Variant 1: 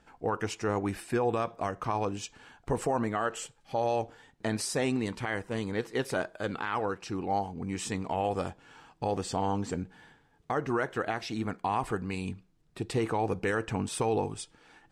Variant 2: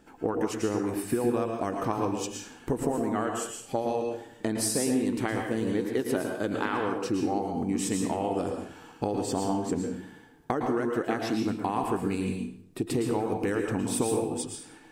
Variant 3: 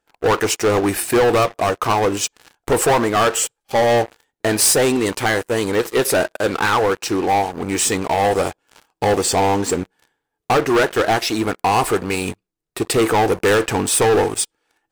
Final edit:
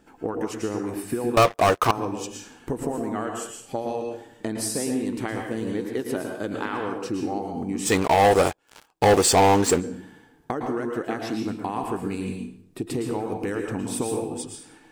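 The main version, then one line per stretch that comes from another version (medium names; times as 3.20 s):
2
1.37–1.91 s: from 3
7.88–9.80 s: from 3, crossfade 0.06 s
not used: 1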